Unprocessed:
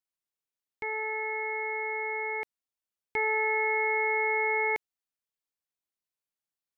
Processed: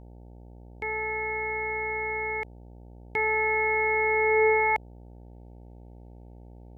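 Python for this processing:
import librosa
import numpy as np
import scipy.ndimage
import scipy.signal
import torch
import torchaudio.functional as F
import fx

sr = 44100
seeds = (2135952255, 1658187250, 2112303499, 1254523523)

y = fx.filter_sweep_highpass(x, sr, from_hz=66.0, to_hz=2100.0, start_s=3.32, end_s=5.42, q=3.1)
y = fx.dmg_buzz(y, sr, base_hz=60.0, harmonics=15, level_db=-49.0, tilt_db=-6, odd_only=False)
y = y * 10.0 ** (2.0 / 20.0)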